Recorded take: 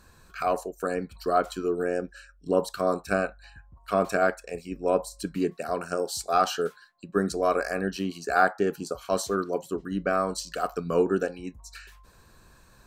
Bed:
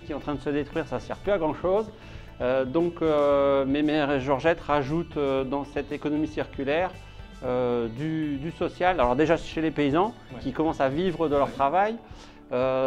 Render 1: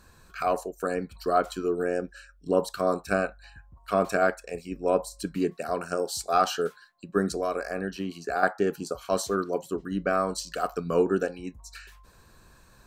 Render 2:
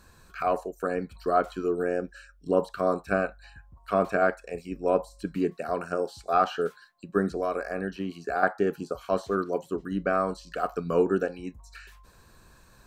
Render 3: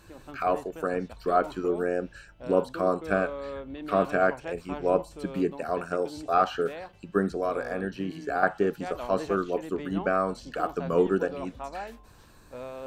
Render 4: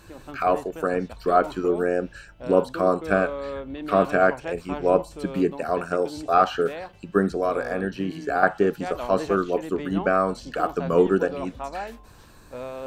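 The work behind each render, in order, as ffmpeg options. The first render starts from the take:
-filter_complex "[0:a]asettb=1/sr,asplit=3[a][b][c];[a]atrim=end=7.364[d];[b]atrim=start=7.36:end=8.43,asetpts=PTS-STARTPTS,afade=t=in:d=0.004:c=qsin,afade=t=out:st=1.066:d=0.004:c=qsin,acrossover=split=850|2700|6400[e][f][g][h];[e]acompressor=threshold=-28dB:ratio=3[i];[f]acompressor=threshold=-37dB:ratio=3[j];[g]acompressor=threshold=-51dB:ratio=3[k];[h]acompressor=threshold=-58dB:ratio=3[l];[i][j][k][l]amix=inputs=4:normalize=0[m];[c]atrim=start=8.426[n];[d][m]acrossfade=d=0.004:c1=hsin:c2=qsin[o];[o][n]acrossfade=d=0.004:c1=qsin:c2=hsin"
-filter_complex "[0:a]acrossover=split=3000[a][b];[b]acompressor=threshold=-54dB:ratio=4:attack=1:release=60[c];[a][c]amix=inputs=2:normalize=0"
-filter_complex "[1:a]volume=-15dB[a];[0:a][a]amix=inputs=2:normalize=0"
-af "volume=4.5dB"

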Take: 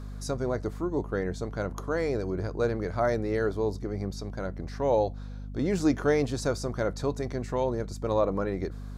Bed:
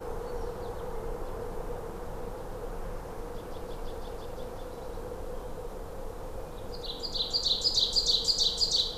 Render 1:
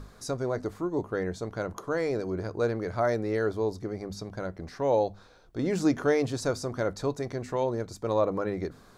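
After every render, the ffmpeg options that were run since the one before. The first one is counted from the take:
-af "bandreject=f=50:t=h:w=6,bandreject=f=100:t=h:w=6,bandreject=f=150:t=h:w=6,bandreject=f=200:t=h:w=6,bandreject=f=250:t=h:w=6"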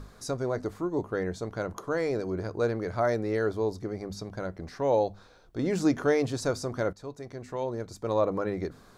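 -filter_complex "[0:a]asplit=2[a][b];[a]atrim=end=6.93,asetpts=PTS-STARTPTS,afade=t=out:st=6.926:d=0.004:c=hsin:silence=0.211349[c];[b]atrim=start=6.93,asetpts=PTS-STARTPTS,afade=t=in:d=1.32:silence=0.211349[d];[c][d]concat=n=2:v=0:a=1"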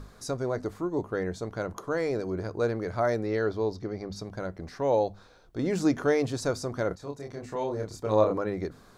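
-filter_complex "[0:a]asettb=1/sr,asplit=3[a][b][c];[a]atrim=end=3.264[d];[b]atrim=start=3.26:end=4.16,asetpts=PTS-STARTPTS,afade=t=in:d=0.004:c=qsin,afade=t=out:st=0.896:d=0.004:c=qsin,highshelf=f=6.7k:t=q:w=1.5:g=-9[e];[c]atrim=start=4.156[f];[d][e]acrossfade=d=0.004:c1=hsin:c2=qsin[g];[g][f]acrossfade=d=0.004:c1=qsin:c2=hsin,asettb=1/sr,asplit=3[h][i][j];[h]atrim=end=6.884[k];[i]atrim=start=6.88:end=8.38,asetpts=PTS-STARTPTS,afade=t=in:d=0.004:c=qsin,afade=t=out:st=1.496:d=0.004:c=qsin,asplit=2[l][m];[m]adelay=28,volume=-2.5dB[n];[l][n]amix=inputs=2:normalize=0,atrim=end_sample=66150[o];[j]atrim=start=8.376[p];[k][o]acrossfade=d=0.004:c1=hsin:c2=qsin[q];[q][p]acrossfade=d=0.004:c1=qsin:c2=hsin"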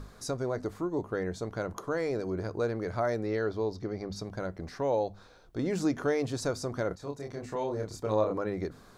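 -af "acompressor=threshold=-31dB:ratio=1.5"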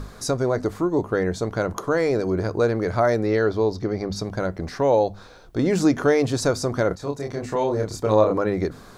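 -af "volume=10dB"

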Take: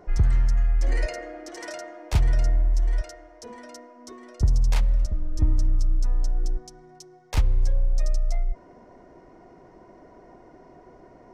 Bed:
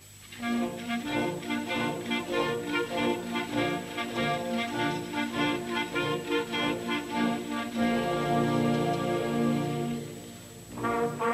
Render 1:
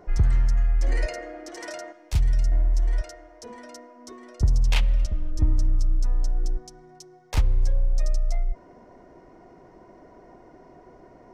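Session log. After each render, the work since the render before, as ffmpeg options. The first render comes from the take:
-filter_complex "[0:a]asettb=1/sr,asplit=3[a][b][c];[a]atrim=end=1.924[d];[b]atrim=start=1.92:end=2.52,asetpts=PTS-STARTPTS,afade=t=in:d=0.004:c=qsin,afade=t=out:st=0.596:d=0.004:c=qsin,equalizer=f=660:w=0.3:g=-10[e];[c]atrim=start=2.516[f];[d][e]acrossfade=d=0.004:c1=hsin:c2=qsin[g];[g][f]acrossfade=d=0.004:c1=qsin:c2=hsin,asettb=1/sr,asplit=3[h][i][j];[h]atrim=end=4.654[k];[i]atrim=start=4.65:end=5.31,asetpts=PTS-STARTPTS,afade=t=in:d=0.004:c=qsin,afade=t=out:st=0.656:d=0.004:c=qsin,equalizer=f=2.9k:w=1.4:g=12[l];[j]atrim=start=5.306[m];[k][l]acrossfade=d=0.004:c1=hsin:c2=qsin[n];[n][m]acrossfade=d=0.004:c1=qsin:c2=hsin"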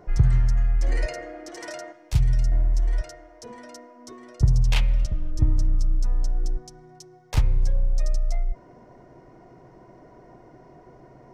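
-af "equalizer=f=130:t=o:w=0.31:g=13.5,bandreject=f=131.6:t=h:w=4,bandreject=f=263.2:t=h:w=4,bandreject=f=394.8:t=h:w=4,bandreject=f=526.4:t=h:w=4,bandreject=f=658:t=h:w=4,bandreject=f=789.6:t=h:w=4,bandreject=f=921.2:t=h:w=4,bandreject=f=1.0528k:t=h:w=4,bandreject=f=1.1844k:t=h:w=4,bandreject=f=1.316k:t=h:w=4,bandreject=f=1.4476k:t=h:w=4,bandreject=f=1.5792k:t=h:w=4,bandreject=f=1.7108k:t=h:w=4,bandreject=f=1.8424k:t=h:w=4,bandreject=f=1.974k:t=h:w=4,bandreject=f=2.1056k:t=h:w=4,bandreject=f=2.2372k:t=h:w=4,bandreject=f=2.3688k:t=h:w=4,bandreject=f=2.5004k:t=h:w=4,bandreject=f=2.632k:t=h:w=4"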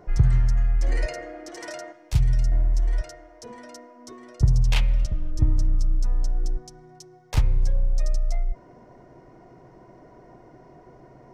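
-af anull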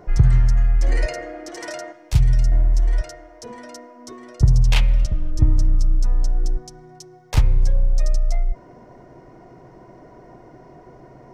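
-af "volume=4.5dB,alimiter=limit=-3dB:level=0:latency=1"

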